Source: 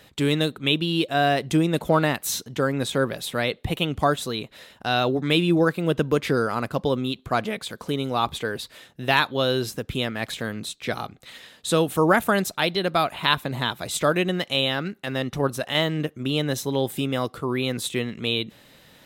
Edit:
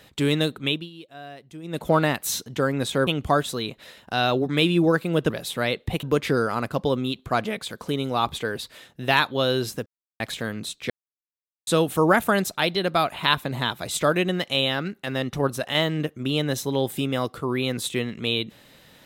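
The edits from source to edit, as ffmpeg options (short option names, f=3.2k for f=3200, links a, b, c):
-filter_complex "[0:a]asplit=10[a][b][c][d][e][f][g][h][i][j];[a]atrim=end=0.9,asetpts=PTS-STARTPTS,afade=t=out:st=0.61:d=0.29:silence=0.1[k];[b]atrim=start=0.9:end=1.62,asetpts=PTS-STARTPTS,volume=-20dB[l];[c]atrim=start=1.62:end=3.072,asetpts=PTS-STARTPTS,afade=t=in:d=0.29:silence=0.1[m];[d]atrim=start=3.798:end=6.032[n];[e]atrim=start=3.068:end=3.802[o];[f]atrim=start=6.028:end=9.86,asetpts=PTS-STARTPTS,afade=t=out:st=3.828:d=0.004:c=hsin[p];[g]atrim=start=9.86:end=10.2,asetpts=PTS-STARTPTS,volume=0[q];[h]atrim=start=10.2:end=10.9,asetpts=PTS-STARTPTS,afade=t=in:d=0.004:c=hsin,afade=t=out:st=0.696:d=0.004:c=hsin[r];[i]atrim=start=10.9:end=11.67,asetpts=PTS-STARTPTS,volume=0[s];[j]atrim=start=11.67,asetpts=PTS-STARTPTS,afade=t=in:d=0.004:c=hsin[t];[k][l][m]concat=n=3:v=0:a=1[u];[u][n]acrossfade=d=0.004:c1=hsin:c2=hsin[v];[v][o]acrossfade=d=0.004:c1=hsin:c2=hsin[w];[p][q][r][s][t]concat=n=5:v=0:a=1[x];[w][x]acrossfade=d=0.004:c1=hsin:c2=hsin"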